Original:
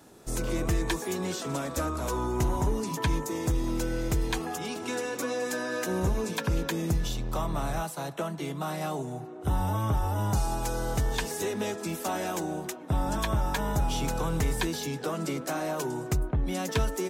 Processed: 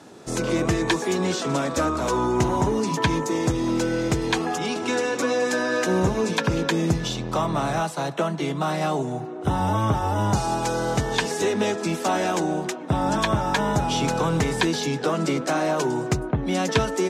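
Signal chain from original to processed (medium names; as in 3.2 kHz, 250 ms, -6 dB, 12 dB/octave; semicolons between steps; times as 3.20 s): band-pass 120–6700 Hz; trim +8.5 dB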